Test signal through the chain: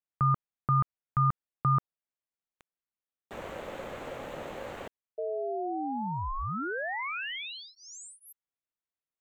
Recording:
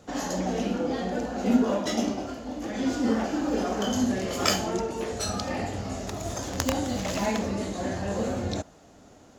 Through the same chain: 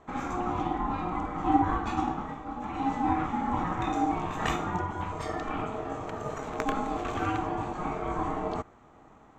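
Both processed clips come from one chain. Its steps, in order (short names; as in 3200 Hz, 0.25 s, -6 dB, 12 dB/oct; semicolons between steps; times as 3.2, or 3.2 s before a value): running mean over 9 samples; ring modulator 540 Hz; gain +1 dB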